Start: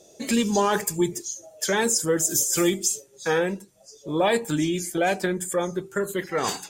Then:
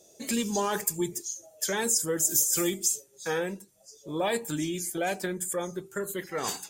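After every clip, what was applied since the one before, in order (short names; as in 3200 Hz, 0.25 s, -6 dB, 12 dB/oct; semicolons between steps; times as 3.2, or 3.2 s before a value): high shelf 7800 Hz +11 dB; gain -7 dB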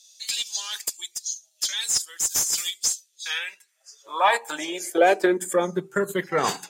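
transient shaper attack 0 dB, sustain -6 dB; high-pass sweep 4000 Hz -> 140 Hz, 3.06–5.97; overdrive pedal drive 11 dB, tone 1900 Hz, clips at -8.5 dBFS; gain +6.5 dB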